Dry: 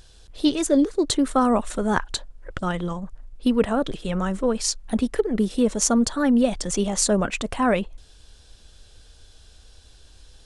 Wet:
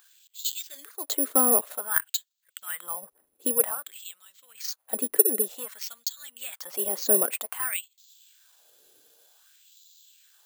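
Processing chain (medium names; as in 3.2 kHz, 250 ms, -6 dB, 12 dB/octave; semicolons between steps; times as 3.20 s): 3.63–4.64 s: compression, threshold -24 dBFS, peak gain reduction 7 dB; LFO high-pass sine 0.53 Hz 340–4000 Hz; careless resampling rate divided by 4×, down filtered, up zero stuff; trim -9 dB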